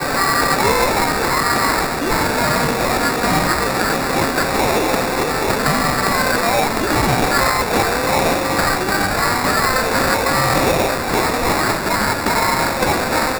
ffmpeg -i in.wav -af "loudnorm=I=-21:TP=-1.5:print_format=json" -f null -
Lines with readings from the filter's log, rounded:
"input_i" : "-16.5",
"input_tp" : "-2.0",
"input_lra" : "0.7",
"input_thresh" : "-26.5",